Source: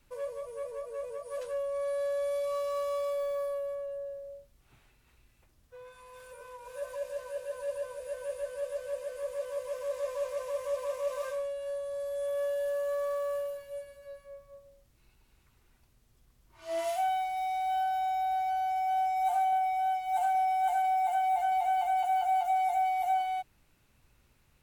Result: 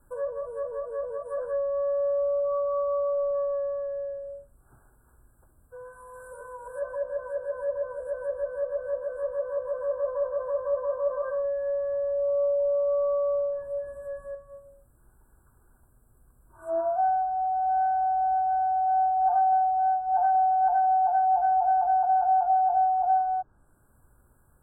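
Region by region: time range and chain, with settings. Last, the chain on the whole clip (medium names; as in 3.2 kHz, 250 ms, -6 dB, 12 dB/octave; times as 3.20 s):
11.44–14.35 s: companding laws mixed up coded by mu + peaking EQ 1.4 kHz -12.5 dB 0.23 oct
whole clip: low-pass that closes with the level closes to 1.3 kHz, closed at -31 dBFS; FFT band-reject 1.7–7.5 kHz; peaking EQ 170 Hz -2.5 dB; trim +6 dB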